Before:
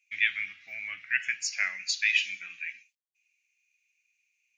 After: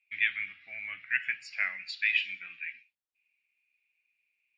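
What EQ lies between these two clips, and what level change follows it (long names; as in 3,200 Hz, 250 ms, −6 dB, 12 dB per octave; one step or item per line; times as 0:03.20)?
moving average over 7 samples
0.0 dB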